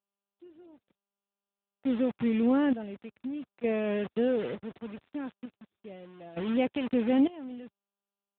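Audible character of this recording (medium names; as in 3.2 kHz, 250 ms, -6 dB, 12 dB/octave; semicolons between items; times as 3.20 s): a quantiser's noise floor 6-bit, dither none; random-step tremolo 1.1 Hz, depth 100%; AMR-NB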